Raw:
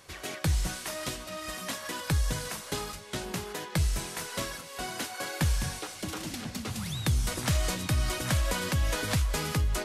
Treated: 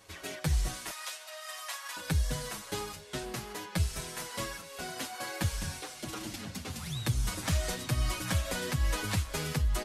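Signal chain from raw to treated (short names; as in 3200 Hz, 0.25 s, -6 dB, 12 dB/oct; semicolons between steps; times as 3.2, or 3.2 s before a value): 0.9–1.97 HPF 720 Hz 24 dB/oct; endless flanger 6.8 ms -1.1 Hz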